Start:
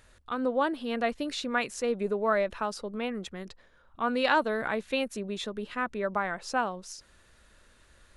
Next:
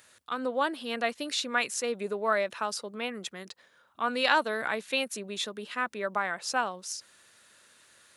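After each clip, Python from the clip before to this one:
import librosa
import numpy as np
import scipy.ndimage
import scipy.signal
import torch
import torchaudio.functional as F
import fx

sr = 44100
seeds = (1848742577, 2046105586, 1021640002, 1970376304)

y = scipy.signal.sosfilt(scipy.signal.butter(4, 100.0, 'highpass', fs=sr, output='sos'), x)
y = fx.tilt_eq(y, sr, slope=2.5)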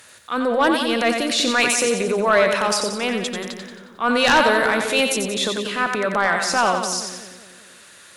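y = fx.transient(x, sr, attack_db=-6, sustain_db=6)
y = fx.echo_split(y, sr, split_hz=480.0, low_ms=194, high_ms=90, feedback_pct=52, wet_db=-6)
y = fx.fold_sine(y, sr, drive_db=8, ceiling_db=-8.5)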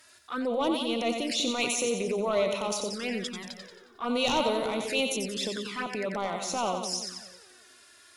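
y = fx.peak_eq(x, sr, hz=5100.0, db=8.5, octaves=0.21)
y = fx.env_flanger(y, sr, rest_ms=3.3, full_db=-17.0)
y = y * 10.0 ** (-7.5 / 20.0)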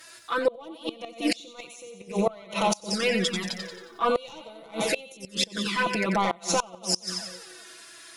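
y = x + 0.92 * np.pad(x, (int(6.0 * sr / 1000.0), 0))[:len(x)]
y = fx.gate_flip(y, sr, shuts_db=-18.0, range_db=-25)
y = y * 10.0 ** (6.0 / 20.0)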